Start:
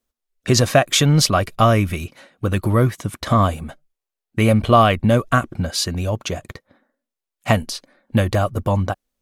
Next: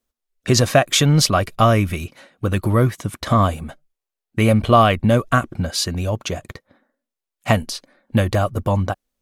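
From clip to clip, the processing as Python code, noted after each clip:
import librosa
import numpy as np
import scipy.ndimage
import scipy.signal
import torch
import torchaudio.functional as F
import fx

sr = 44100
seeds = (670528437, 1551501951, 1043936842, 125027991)

y = x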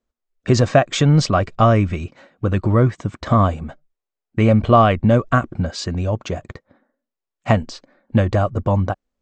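y = scipy.signal.sosfilt(scipy.signal.cheby1(8, 1.0, 8100.0, 'lowpass', fs=sr, output='sos'), x)
y = fx.high_shelf(y, sr, hz=2100.0, db=-11.0)
y = y * 10.0 ** (2.5 / 20.0)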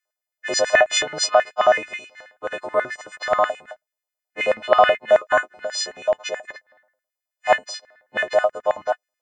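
y = fx.freq_snap(x, sr, grid_st=3)
y = fx.filter_lfo_highpass(y, sr, shape='square', hz=9.3, low_hz=620.0, high_hz=1800.0, q=4.2)
y = y * 10.0 ** (-6.5 / 20.0)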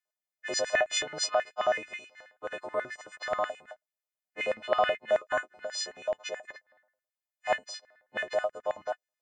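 y = fx.dynamic_eq(x, sr, hz=1000.0, q=0.74, threshold_db=-26.0, ratio=4.0, max_db=-4)
y = y * 10.0 ** (-8.5 / 20.0)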